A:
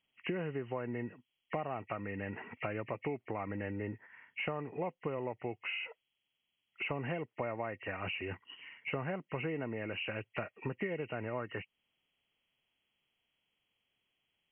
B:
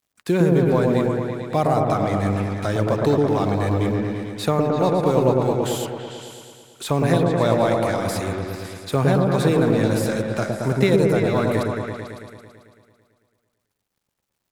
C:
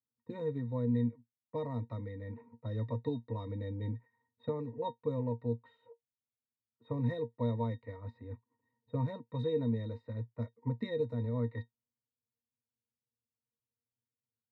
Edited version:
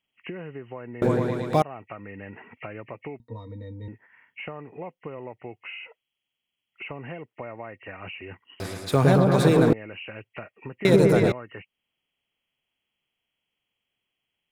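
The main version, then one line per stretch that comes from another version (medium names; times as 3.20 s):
A
1.02–1.62 s: from B
3.20–3.88 s: from C
8.60–9.73 s: from B
10.85–11.32 s: from B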